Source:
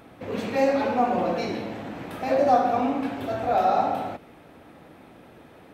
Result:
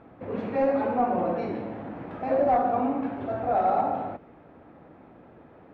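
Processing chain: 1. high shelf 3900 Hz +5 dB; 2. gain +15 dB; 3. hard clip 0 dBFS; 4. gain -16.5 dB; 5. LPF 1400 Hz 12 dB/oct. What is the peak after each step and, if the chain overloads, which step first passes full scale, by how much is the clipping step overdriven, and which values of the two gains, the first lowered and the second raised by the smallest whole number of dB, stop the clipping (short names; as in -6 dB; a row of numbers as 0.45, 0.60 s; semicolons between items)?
-6.5, +8.5, 0.0, -16.5, -16.0 dBFS; step 2, 8.5 dB; step 2 +6 dB, step 4 -7.5 dB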